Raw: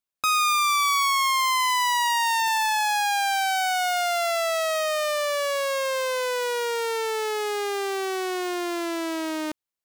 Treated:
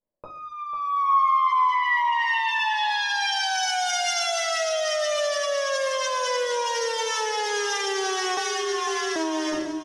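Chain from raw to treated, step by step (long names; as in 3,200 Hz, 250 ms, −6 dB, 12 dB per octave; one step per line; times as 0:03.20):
rectangular room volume 370 cubic metres, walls furnished, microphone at 5 metres
0:08.37–0:09.16: frequency shifter +52 Hz
EQ curve with evenly spaced ripples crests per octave 1.2, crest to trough 8 dB
brickwall limiter −20 dBFS, peak gain reduction 20 dB
repeating echo 496 ms, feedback 40%, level −10 dB
low-pass filter sweep 530 Hz → 6,500 Hz, 0:00.15–0:03.72
0:00.96–0:01.74: high-shelf EQ 8,600 Hz → 5,100 Hz +8.5 dB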